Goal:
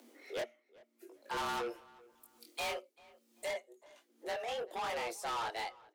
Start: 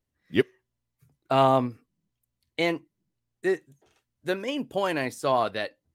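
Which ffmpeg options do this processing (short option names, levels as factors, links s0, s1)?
-filter_complex "[0:a]asettb=1/sr,asplit=3[s0][s1][s2];[s0]atrim=end=1.464[s3];[s1]atrim=start=1.46:end=3.51,asetpts=PTS-STARTPTS,afade=t=in:d=0.004:c=qsin,afade=t=out:st=2.046:d=0.004:c=qsin,highshelf=f=2400:g=10[s4];[s2]atrim=start=3.506[s5];[s3][s4]acrossfade=d=0.004:c1=hsin:c2=qsin[s6];[s6][s5]acrossfade=d=0.004:c1=qsin:c2=hsin,acompressor=mode=upward:threshold=0.0158:ratio=2.5,flanger=delay=18.5:depth=6.2:speed=0.99,afreqshift=230,asoftclip=type=tanh:threshold=0.0211,asplit=2[s7][s8];[s8]adelay=390,lowpass=f=3000:p=1,volume=0.075,asplit=2[s9][s10];[s10]adelay=390,lowpass=f=3000:p=1,volume=0.31[s11];[s7][s9][s11]amix=inputs=3:normalize=0,volume=0.891"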